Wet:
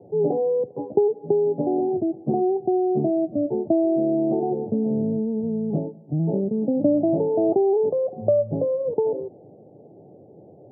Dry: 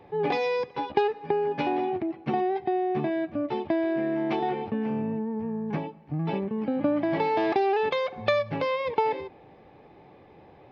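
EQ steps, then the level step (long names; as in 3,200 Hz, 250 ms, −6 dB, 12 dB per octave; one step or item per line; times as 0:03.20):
Chebyshev band-pass filter 100–670 Hz, order 4
+6.5 dB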